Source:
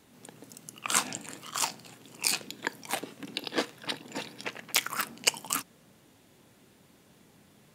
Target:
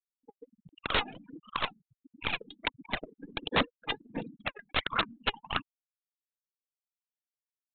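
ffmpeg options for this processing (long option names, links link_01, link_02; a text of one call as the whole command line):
ffmpeg -i in.wav -af "afftfilt=real='re*gte(hypot(re,im),0.0224)':imag='im*gte(hypot(re,im),0.0224)':win_size=1024:overlap=0.75,aeval=exprs='0.708*(cos(1*acos(clip(val(0)/0.708,-1,1)))-cos(1*PI/2))+0.00501*(cos(2*acos(clip(val(0)/0.708,-1,1)))-cos(2*PI/2))+0.0794*(cos(6*acos(clip(val(0)/0.708,-1,1)))-cos(6*PI/2))':channel_layout=same,adynamicsmooth=sensitivity=4.5:basefreq=1600,aphaser=in_gain=1:out_gain=1:delay=2.5:decay=0.7:speed=1.4:type=sinusoidal,aresample=8000,aeval=exprs='(mod(7.94*val(0)+1,2)-1)/7.94':channel_layout=same,aresample=44100" out.wav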